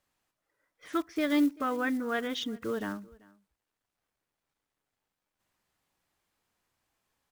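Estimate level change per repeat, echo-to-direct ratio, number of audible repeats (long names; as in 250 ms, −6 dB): repeats not evenly spaced, −24.0 dB, 1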